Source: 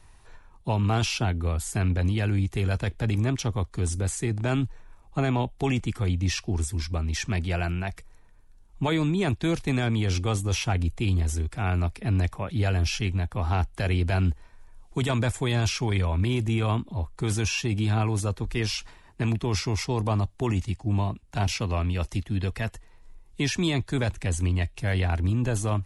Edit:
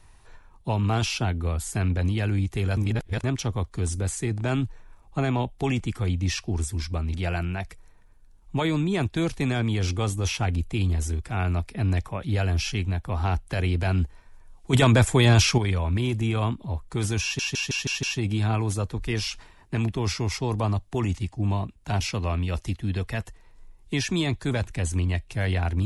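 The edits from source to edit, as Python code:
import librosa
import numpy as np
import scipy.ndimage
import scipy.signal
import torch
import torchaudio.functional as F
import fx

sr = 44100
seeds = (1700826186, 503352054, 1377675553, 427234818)

y = fx.edit(x, sr, fx.reverse_span(start_s=2.77, length_s=0.47),
    fx.cut(start_s=7.14, length_s=0.27),
    fx.clip_gain(start_s=15.0, length_s=0.85, db=7.5),
    fx.stutter(start_s=17.5, slice_s=0.16, count=6), tone=tone)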